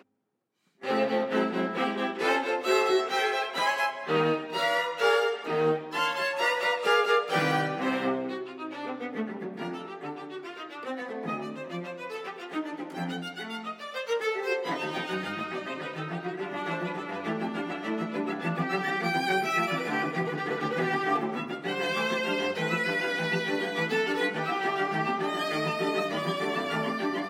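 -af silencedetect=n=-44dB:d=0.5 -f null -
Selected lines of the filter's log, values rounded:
silence_start: 0.00
silence_end: 0.82 | silence_duration: 0.82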